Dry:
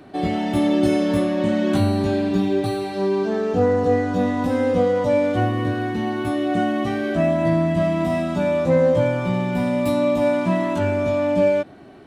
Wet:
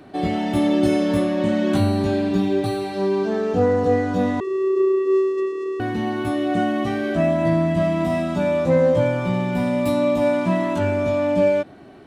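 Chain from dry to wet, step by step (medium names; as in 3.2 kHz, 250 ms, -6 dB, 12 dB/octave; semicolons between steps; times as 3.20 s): 4.40–5.80 s: vocoder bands 4, square 383 Hz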